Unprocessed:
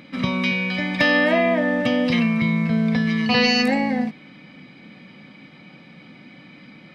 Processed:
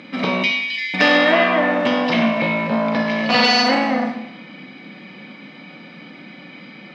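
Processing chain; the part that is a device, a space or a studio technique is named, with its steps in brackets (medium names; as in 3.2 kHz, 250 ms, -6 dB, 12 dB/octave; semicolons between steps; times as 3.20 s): 0.43–0.94 s: Chebyshev high-pass 1.9 kHz, order 6; public-address speaker with an overloaded transformer (transformer saturation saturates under 1.2 kHz; band-pass 210–5900 Hz); Schroeder reverb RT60 0.86 s, combs from 31 ms, DRR 4.5 dB; trim +6 dB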